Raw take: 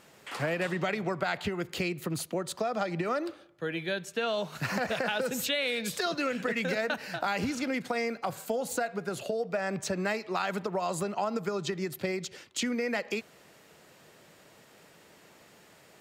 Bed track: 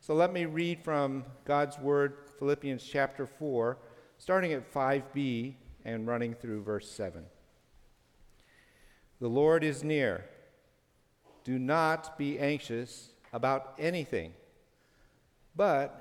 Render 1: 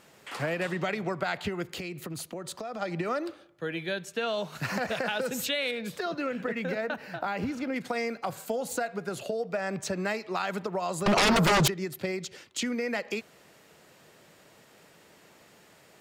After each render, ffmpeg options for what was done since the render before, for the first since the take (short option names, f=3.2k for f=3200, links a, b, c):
-filter_complex "[0:a]asplit=3[a][b][c];[a]afade=t=out:st=1.65:d=0.02[d];[b]acompressor=threshold=-33dB:ratio=6:attack=3.2:release=140:knee=1:detection=peak,afade=t=in:st=1.65:d=0.02,afade=t=out:st=2.81:d=0.02[e];[c]afade=t=in:st=2.81:d=0.02[f];[d][e][f]amix=inputs=3:normalize=0,asettb=1/sr,asplit=3[g][h][i];[g]atrim=end=5.714[j];[h]atrim=start=5.71:end=7.76,asetpts=PTS-STARTPTS,afade=t=in:d=0.004:c=qsin,afade=t=out:st=2.046:d=0.004:c=qsin,equalizer=f=7.9k:t=o:w=2.6:g=-11.5[k];[i]atrim=start=7.756[l];[j][k]acrossfade=d=0.004:c1=hsin:c2=qsin[m];[m][l]acrossfade=d=0.004:c1=qsin:c2=hsin,asettb=1/sr,asplit=3[n][o][p];[n]atrim=end=11.064[q];[o]atrim=start=11.06:end=11.68,asetpts=PTS-STARTPTS,afade=t=in:d=0.004:c=qsin,afade=t=out:st=0.616:d=0.004:c=qsin,aeval=exprs='0.119*sin(PI/2*6.31*val(0)/0.119)':c=same[r];[p]atrim=start=11.676[s];[q][r]acrossfade=d=0.004:c1=hsin:c2=qsin[t];[t][s]acrossfade=d=0.004:c1=qsin:c2=hsin"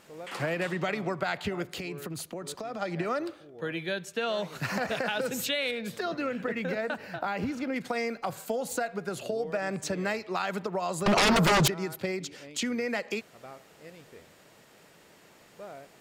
-filter_complex "[1:a]volume=-17.5dB[a];[0:a][a]amix=inputs=2:normalize=0"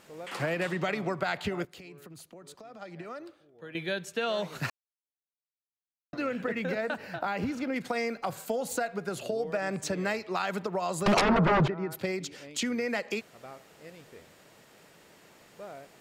-filter_complex "[0:a]asplit=3[a][b][c];[a]afade=t=out:st=11.2:d=0.02[d];[b]lowpass=1.7k,afade=t=in:st=11.2:d=0.02,afade=t=out:st=11.9:d=0.02[e];[c]afade=t=in:st=11.9:d=0.02[f];[d][e][f]amix=inputs=3:normalize=0,asplit=5[g][h][i][j][k];[g]atrim=end=1.652[l];[h]atrim=start=1.648:end=3.752,asetpts=PTS-STARTPTS,volume=-11dB[m];[i]atrim=start=3.748:end=4.7,asetpts=PTS-STARTPTS,afade=t=out:st=0.948:d=0.004:c=hsin[n];[j]atrim=start=4.7:end=6.13,asetpts=PTS-STARTPTS,volume=0[o];[k]atrim=start=6.13,asetpts=PTS-STARTPTS,afade=t=in:d=0.004:c=hsin[p];[l][m]acrossfade=d=0.004:c1=hsin:c2=hsin[q];[n][o][p]concat=n=3:v=0:a=1[r];[q][r]acrossfade=d=0.004:c1=hsin:c2=hsin"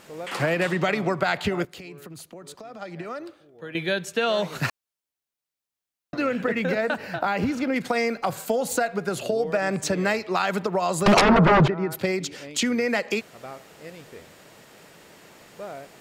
-af "volume=7dB"